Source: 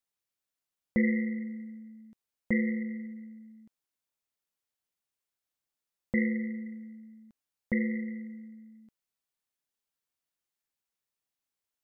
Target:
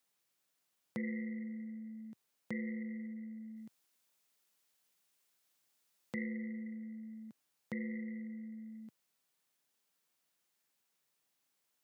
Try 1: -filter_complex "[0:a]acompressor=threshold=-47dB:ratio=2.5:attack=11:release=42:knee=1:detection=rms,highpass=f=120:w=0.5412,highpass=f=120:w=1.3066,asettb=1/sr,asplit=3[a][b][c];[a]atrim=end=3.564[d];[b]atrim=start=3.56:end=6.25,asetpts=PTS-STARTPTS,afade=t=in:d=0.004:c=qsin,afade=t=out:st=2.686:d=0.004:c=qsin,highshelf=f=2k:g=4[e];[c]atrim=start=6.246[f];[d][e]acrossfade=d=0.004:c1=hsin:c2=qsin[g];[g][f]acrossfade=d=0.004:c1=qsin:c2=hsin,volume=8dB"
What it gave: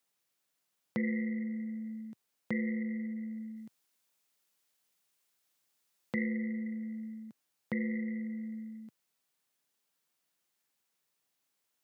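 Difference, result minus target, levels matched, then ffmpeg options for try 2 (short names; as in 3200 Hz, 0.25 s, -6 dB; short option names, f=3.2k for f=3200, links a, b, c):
compressor: peak gain reduction -6.5 dB
-filter_complex "[0:a]acompressor=threshold=-57.5dB:ratio=2.5:attack=11:release=42:knee=1:detection=rms,highpass=f=120:w=0.5412,highpass=f=120:w=1.3066,asettb=1/sr,asplit=3[a][b][c];[a]atrim=end=3.564[d];[b]atrim=start=3.56:end=6.25,asetpts=PTS-STARTPTS,afade=t=in:d=0.004:c=qsin,afade=t=out:st=2.686:d=0.004:c=qsin,highshelf=f=2k:g=4[e];[c]atrim=start=6.246[f];[d][e]acrossfade=d=0.004:c1=hsin:c2=qsin[g];[g][f]acrossfade=d=0.004:c1=qsin:c2=hsin,volume=8dB"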